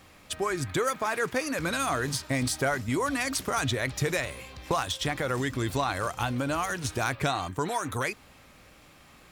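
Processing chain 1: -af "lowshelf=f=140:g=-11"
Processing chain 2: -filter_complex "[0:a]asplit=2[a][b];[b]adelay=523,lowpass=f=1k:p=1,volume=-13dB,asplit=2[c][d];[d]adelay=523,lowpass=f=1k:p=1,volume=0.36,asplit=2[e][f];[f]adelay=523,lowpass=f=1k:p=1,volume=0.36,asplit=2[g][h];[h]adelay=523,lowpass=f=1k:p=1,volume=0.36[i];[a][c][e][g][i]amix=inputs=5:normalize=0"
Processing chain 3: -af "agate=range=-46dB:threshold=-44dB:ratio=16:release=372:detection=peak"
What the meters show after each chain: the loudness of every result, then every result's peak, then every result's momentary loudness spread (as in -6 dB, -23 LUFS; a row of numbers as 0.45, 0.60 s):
-30.0, -29.0, -29.0 LUFS; -14.0, -15.5, -16.0 dBFS; 3, 5, 4 LU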